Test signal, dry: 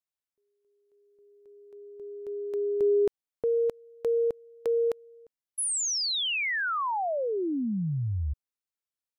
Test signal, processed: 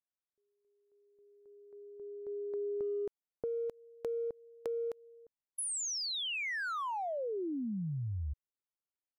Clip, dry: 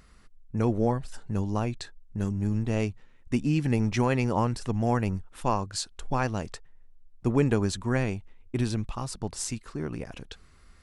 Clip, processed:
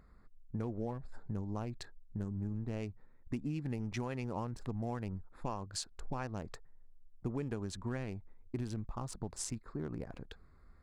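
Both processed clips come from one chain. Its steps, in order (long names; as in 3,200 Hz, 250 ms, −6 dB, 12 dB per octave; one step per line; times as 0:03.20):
adaptive Wiener filter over 15 samples
downward compressor, threshold −30 dBFS
level −4.5 dB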